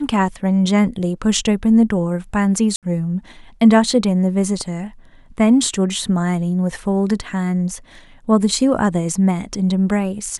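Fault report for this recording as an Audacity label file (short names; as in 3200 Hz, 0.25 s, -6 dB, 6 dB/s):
2.760000	2.830000	gap 67 ms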